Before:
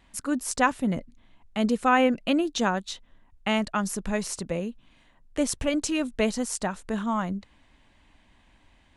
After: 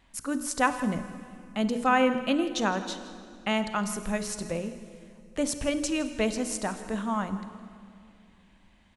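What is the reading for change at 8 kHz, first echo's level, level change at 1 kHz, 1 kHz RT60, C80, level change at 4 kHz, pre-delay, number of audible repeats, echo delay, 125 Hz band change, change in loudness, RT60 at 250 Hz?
-1.5 dB, -17.5 dB, -1.5 dB, 2.2 s, 11.5 dB, -1.5 dB, 31 ms, 1, 0.163 s, -2.5 dB, -2.0 dB, 2.9 s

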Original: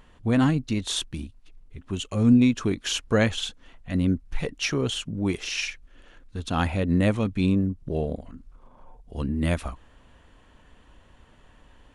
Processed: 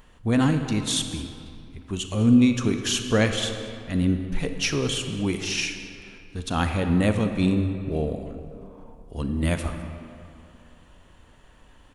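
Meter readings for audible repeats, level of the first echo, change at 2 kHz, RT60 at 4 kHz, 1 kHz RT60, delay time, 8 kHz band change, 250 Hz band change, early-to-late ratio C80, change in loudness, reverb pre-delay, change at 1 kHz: 1, -19.5 dB, +1.5 dB, 1.6 s, 2.6 s, 0.206 s, +4.5 dB, +1.0 dB, 7.5 dB, +1.0 dB, 28 ms, +1.0 dB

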